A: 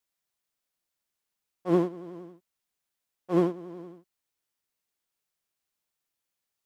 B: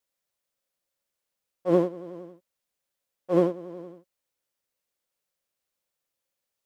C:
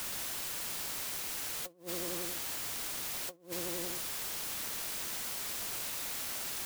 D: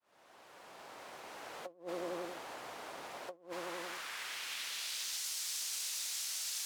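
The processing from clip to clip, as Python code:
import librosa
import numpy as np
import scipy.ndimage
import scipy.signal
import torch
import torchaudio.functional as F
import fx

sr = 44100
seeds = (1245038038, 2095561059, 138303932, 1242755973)

y1 = fx.peak_eq(x, sr, hz=540.0, db=11.0, octaves=0.28)
y2 = fx.quant_dither(y1, sr, seeds[0], bits=6, dither='triangular')
y2 = fx.over_compress(y2, sr, threshold_db=-33.0, ratio=-0.5)
y2 = y2 * 10.0 ** (-5.0 / 20.0)
y3 = fx.fade_in_head(y2, sr, length_s=1.58)
y3 = fx.filter_sweep_bandpass(y3, sr, from_hz=690.0, to_hz=5700.0, start_s=3.26, end_s=5.28, q=1.1)
y3 = y3 * 10.0 ** (5.0 / 20.0)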